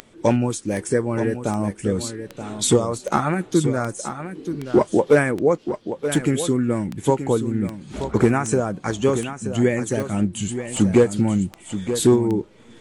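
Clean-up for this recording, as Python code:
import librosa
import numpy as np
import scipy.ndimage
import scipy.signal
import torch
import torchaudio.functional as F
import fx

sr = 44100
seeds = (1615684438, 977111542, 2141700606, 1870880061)

y = fx.fix_declick_ar(x, sr, threshold=10.0)
y = fx.fix_echo_inverse(y, sr, delay_ms=928, level_db=-10.0)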